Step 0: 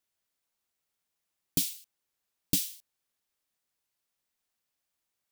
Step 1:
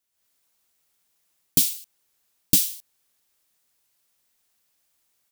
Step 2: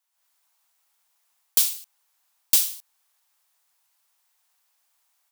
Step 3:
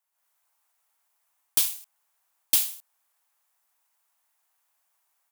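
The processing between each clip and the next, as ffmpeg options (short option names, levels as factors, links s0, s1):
-af "highshelf=f=5000:g=5.5,dynaudnorm=f=120:g=3:m=2.82"
-af "acrusher=bits=5:mode=log:mix=0:aa=0.000001,highpass=f=870:t=q:w=2"
-filter_complex "[0:a]acrossover=split=230|5000[s0][s1][s2];[s1]adynamicsmooth=sensitivity=7.5:basefreq=3400[s3];[s2]aeval=exprs='val(0)*sin(2*PI*1200*n/s)':c=same[s4];[s0][s3][s4]amix=inputs=3:normalize=0"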